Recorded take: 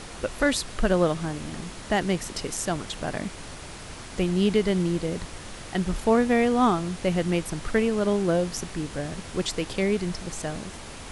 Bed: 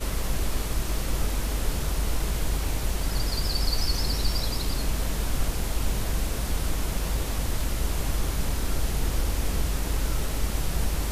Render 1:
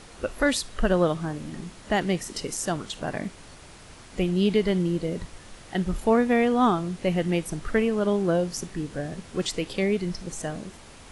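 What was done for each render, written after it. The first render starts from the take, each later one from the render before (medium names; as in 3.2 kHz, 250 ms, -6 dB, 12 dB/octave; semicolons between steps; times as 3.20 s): noise print and reduce 7 dB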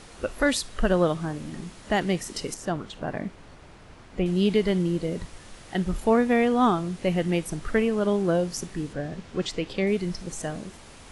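2.54–4.26 s: low-pass 1.9 kHz 6 dB/octave; 8.93–9.87 s: distance through air 75 m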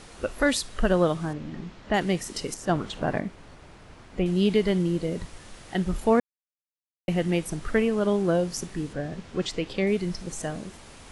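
1.33–1.94 s: distance through air 150 m; 2.69–3.20 s: gain +4.5 dB; 6.20–7.08 s: mute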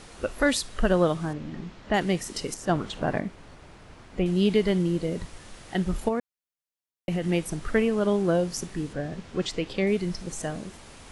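6.08–7.24 s: compression 10:1, threshold -22 dBFS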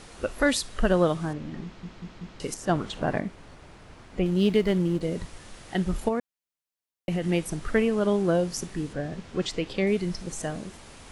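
1.64 s: stutter in place 0.19 s, 4 plays; 4.23–5.01 s: hysteresis with a dead band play -37 dBFS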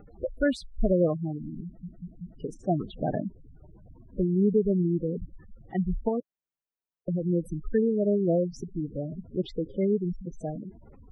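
spectral gate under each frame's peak -10 dB strong; peaking EQ 8.7 kHz -15 dB 2.8 oct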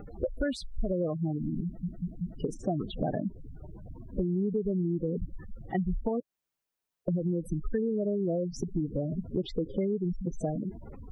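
in parallel at +1 dB: peak limiter -22.5 dBFS, peak gain reduction 10.5 dB; on the sum: compression 5:1, threshold -27 dBFS, peak gain reduction 11 dB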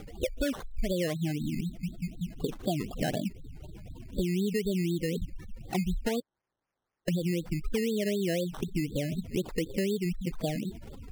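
decimation with a swept rate 15×, swing 60% 4 Hz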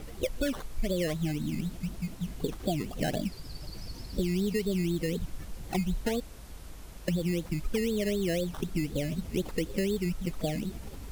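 add bed -18.5 dB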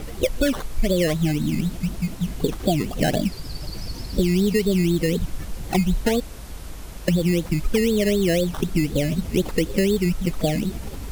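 trim +9.5 dB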